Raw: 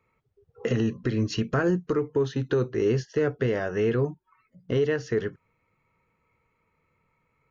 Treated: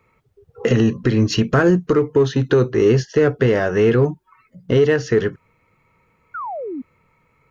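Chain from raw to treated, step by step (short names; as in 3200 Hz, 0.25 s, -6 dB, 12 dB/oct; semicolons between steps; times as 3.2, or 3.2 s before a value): in parallel at -11.5 dB: overloaded stage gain 29.5 dB; on the sum: painted sound fall, 6.34–6.82, 240–1500 Hz -36 dBFS; gain +8.5 dB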